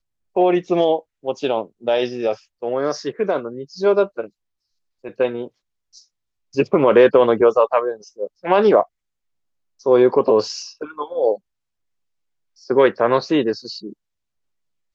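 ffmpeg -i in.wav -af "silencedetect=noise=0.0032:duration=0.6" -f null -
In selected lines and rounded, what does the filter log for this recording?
silence_start: 4.30
silence_end: 5.04 | silence_duration: 0.74
silence_start: 8.86
silence_end: 9.79 | silence_duration: 0.93
silence_start: 11.39
silence_end: 12.57 | silence_duration: 1.18
silence_start: 13.93
silence_end: 14.94 | silence_duration: 1.01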